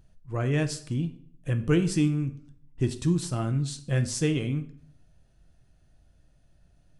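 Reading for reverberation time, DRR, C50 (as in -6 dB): 0.55 s, 8.0 dB, 14.0 dB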